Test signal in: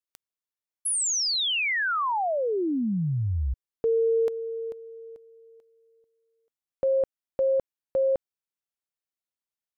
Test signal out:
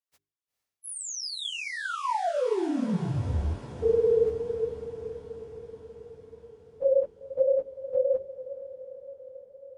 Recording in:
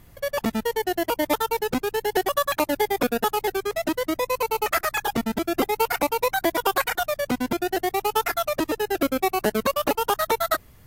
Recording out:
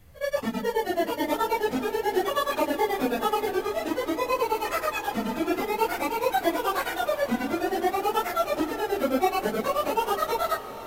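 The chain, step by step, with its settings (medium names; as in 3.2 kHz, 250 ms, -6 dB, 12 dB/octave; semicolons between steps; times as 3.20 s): phase randomisation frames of 50 ms; treble shelf 9 kHz -5 dB; hum notches 50/100/150/200/250/300/350/400 Hz; harmonic-percussive split harmonic +8 dB; echo that smears into a reverb 460 ms, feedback 68%, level -14 dB; trim -8.5 dB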